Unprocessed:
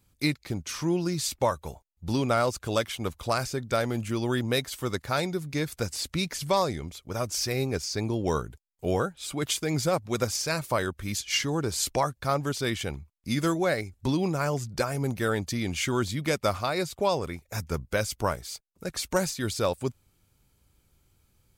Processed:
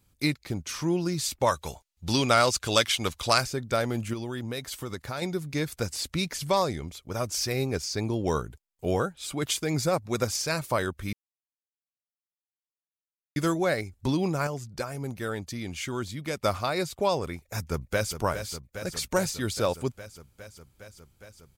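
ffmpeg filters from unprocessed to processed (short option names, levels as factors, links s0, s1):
-filter_complex "[0:a]asplit=3[s0][s1][s2];[s0]afade=t=out:st=1.46:d=0.02[s3];[s1]equalizer=f=4600:w=0.33:g=11,afade=t=in:st=1.46:d=0.02,afade=t=out:st=3.4:d=0.02[s4];[s2]afade=t=in:st=3.4:d=0.02[s5];[s3][s4][s5]amix=inputs=3:normalize=0,asettb=1/sr,asplit=3[s6][s7][s8];[s6]atrim=end=4.134[s9];[s7]atrim=start=4.13:end=5.22,asetpts=PTS-STARTPTS,afade=t=in:d=0.004:c=qsin,afade=t=out:st=1.086:d=0.004:c=qsin,acompressor=threshold=0.0316:ratio=4:attack=3.2:release=140:knee=1:detection=peak[s10];[s8]atrim=start=5.216[s11];[s9][s10]acrossfade=d=0.004:c1=hsin:c2=qsin[s12];[s12][s11]acrossfade=d=0.004:c1=qsin:c2=hsin,asettb=1/sr,asplit=3[s13][s14][s15];[s13]atrim=end=9.734[s16];[s14]atrim=start=9.73:end=10.22,asetpts=PTS-STARTPTS,afade=t=in:d=0.004:c=qsin,afade=t=out:st=0.486:d=0.004:c=qsin,bandreject=f=3100:w=7[s17];[s15]atrim=start=10.216[s18];[s16][s17]acrossfade=d=0.004:c1=hsin:c2=qsin[s19];[s19][s18]acrossfade=d=0.004:c1=qsin:c2=hsin,asplit=2[s20][s21];[s21]afade=t=in:st=17.4:d=0.01,afade=t=out:st=18.16:d=0.01,aecho=0:1:410|820|1230|1640|2050|2460|2870|3280|3690|4100|4510|4920:0.334965|0.267972|0.214378|0.171502|0.137202|0.109761|0.0878092|0.0702473|0.0561979|0.0449583|0.0359666|0.0287733[s22];[s20][s22]amix=inputs=2:normalize=0,asplit=5[s23][s24][s25][s26][s27];[s23]atrim=end=11.13,asetpts=PTS-STARTPTS,afade=t=out:st=11.126:d=0.004:c=hsin[s28];[s24]atrim=start=11.13:end=13.36,asetpts=PTS-STARTPTS,volume=0[s29];[s25]atrim=start=13.36:end=14.472,asetpts=PTS-STARTPTS,afade=t=in:d=0.004:c=hsin[s30];[s26]atrim=start=14.468:end=16.372,asetpts=PTS-STARTPTS,volume=0.531[s31];[s27]atrim=start=16.368[s32];[s28][s29][s30]concat=n=3:v=0:a=1[s33];[s33][s31]acrossfade=d=0.004:c1=hsin:c2=hsin[s34];[s34][s32]acrossfade=d=0.004:c1=hsin:c2=hsin"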